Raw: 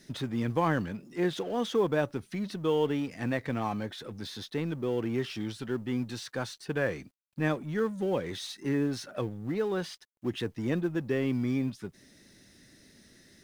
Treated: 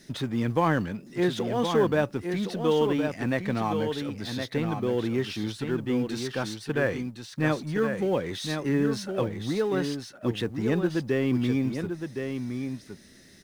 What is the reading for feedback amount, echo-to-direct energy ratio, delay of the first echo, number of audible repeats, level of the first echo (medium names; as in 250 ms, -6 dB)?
no regular repeats, -6.5 dB, 1065 ms, 1, -6.5 dB